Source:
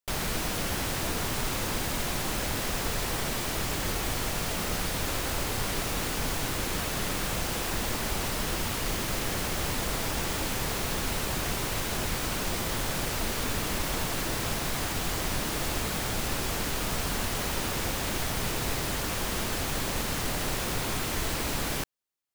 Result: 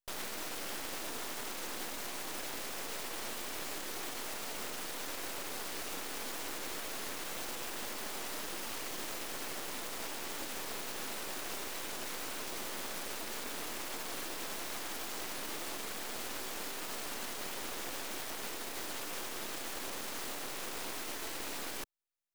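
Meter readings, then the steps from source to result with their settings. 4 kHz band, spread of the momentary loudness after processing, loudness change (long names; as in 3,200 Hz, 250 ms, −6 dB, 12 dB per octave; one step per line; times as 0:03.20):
−9.0 dB, 0 LU, −9.5 dB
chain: high-pass filter 250 Hz 24 dB per octave
brickwall limiter −25 dBFS, peak gain reduction 6 dB
half-wave rectification
level −2 dB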